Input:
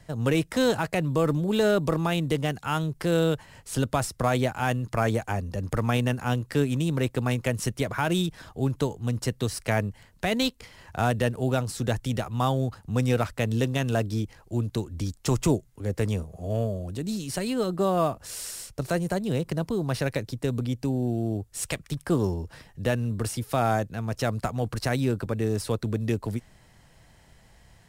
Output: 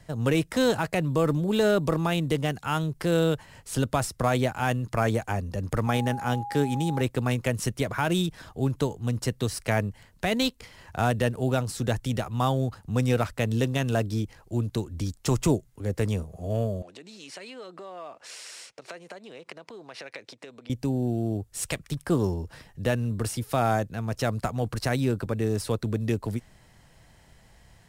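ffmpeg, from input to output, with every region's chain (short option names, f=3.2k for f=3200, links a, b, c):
-filter_complex "[0:a]asettb=1/sr,asplit=3[a][b][c];[a]atrim=end=5.874[d];[b]atrim=start=5.87:end=7.01,asetpts=PTS-STARTPTS,afade=t=in:d=0.004:c=qsin,afade=t=out:st=1.136:d=0.004:c=qsin,lowshelf=f=69:g=-9,aeval=exprs='val(0)+0.0224*sin(2*PI*820*n/s)':c=same,bandreject=f=2.7k:w=11[e];[c]atrim=start=7.006[f];[d][e]acrossfade=d=0.004:c1=hsin:c2=qsin[g];[g][f]acrossfade=d=0.004:c1=qsin:c2=hsin,asettb=1/sr,asplit=3[h][i][j];[h]atrim=end=16.824[k];[i]atrim=start=16.82:end=20.7,asetpts=PTS-STARTPTS,afade=t=in:d=0.004:c=qsin,afade=t=out:st=3.876:d=0.004:c=qsin,acompressor=threshold=-33dB:ratio=12:attack=3.2:release=140:knee=1:detection=peak,highpass=440,lowpass=5.8k,equalizer=f=2.3k:w=2.1:g=5.5[l];[j]atrim=start=20.696[m];[k][l]acrossfade=d=0.004:c1=hsin:c2=qsin[n];[n][m]acrossfade=d=0.004:c1=qsin:c2=hsin"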